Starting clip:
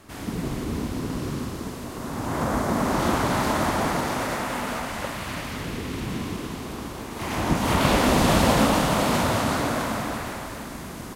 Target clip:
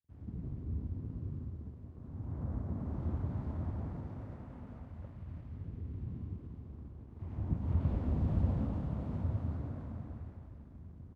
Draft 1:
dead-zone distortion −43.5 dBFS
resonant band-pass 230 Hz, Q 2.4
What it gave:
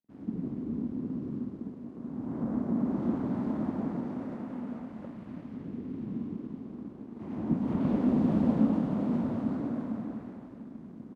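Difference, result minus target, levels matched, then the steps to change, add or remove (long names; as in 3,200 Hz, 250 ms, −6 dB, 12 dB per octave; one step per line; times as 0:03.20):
125 Hz band −9.0 dB
change: resonant band-pass 81 Hz, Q 2.4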